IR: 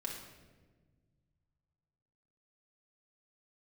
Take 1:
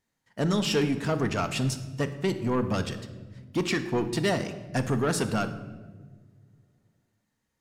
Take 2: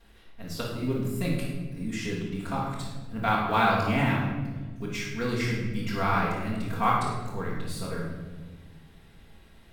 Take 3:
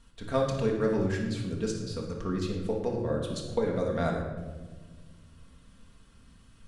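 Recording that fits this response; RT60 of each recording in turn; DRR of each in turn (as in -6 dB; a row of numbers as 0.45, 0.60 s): 3; not exponential, 1.4 s, 1.4 s; 8.0, -10.0, -2.0 dB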